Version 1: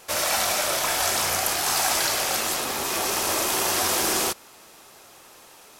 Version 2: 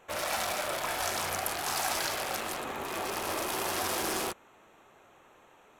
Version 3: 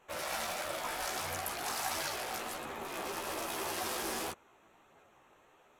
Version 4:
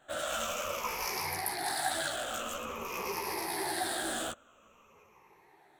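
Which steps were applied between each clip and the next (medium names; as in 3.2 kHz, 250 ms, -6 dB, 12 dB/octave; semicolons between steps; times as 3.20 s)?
local Wiener filter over 9 samples; trim -6 dB
chorus voices 2, 1.5 Hz, delay 15 ms, depth 3 ms; trim -2 dB
drifting ripple filter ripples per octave 0.82, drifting -0.49 Hz, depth 14 dB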